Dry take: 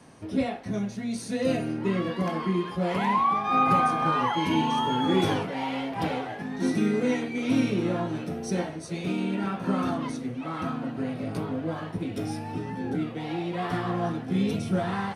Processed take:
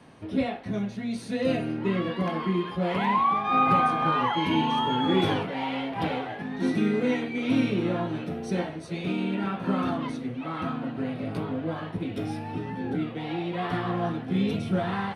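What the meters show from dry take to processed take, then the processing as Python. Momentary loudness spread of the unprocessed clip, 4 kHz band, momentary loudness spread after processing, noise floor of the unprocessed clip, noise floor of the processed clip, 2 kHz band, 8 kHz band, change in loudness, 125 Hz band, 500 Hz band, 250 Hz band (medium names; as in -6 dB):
9 LU, +1.5 dB, 9 LU, -38 dBFS, -38 dBFS, +1.0 dB, no reading, 0.0 dB, 0.0 dB, 0.0 dB, 0.0 dB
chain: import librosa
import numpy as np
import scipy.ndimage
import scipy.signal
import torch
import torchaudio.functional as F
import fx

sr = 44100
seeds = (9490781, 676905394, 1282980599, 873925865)

y = fx.high_shelf_res(x, sr, hz=4600.0, db=-6.5, q=1.5)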